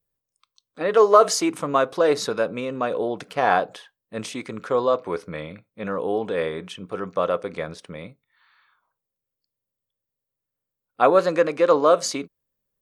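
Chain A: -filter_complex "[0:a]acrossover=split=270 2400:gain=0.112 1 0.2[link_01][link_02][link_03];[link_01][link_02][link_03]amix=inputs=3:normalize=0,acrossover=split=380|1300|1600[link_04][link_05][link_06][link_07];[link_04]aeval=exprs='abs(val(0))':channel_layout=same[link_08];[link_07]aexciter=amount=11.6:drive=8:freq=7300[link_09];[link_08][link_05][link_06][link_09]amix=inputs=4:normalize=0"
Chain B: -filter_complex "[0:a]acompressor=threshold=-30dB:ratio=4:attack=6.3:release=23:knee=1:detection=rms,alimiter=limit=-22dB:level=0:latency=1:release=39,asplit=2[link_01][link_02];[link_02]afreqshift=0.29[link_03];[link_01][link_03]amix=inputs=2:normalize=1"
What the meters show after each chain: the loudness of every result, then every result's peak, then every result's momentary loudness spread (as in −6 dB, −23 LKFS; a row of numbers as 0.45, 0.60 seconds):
−24.0, −36.5 LKFS; −4.0, −22.0 dBFS; 18, 8 LU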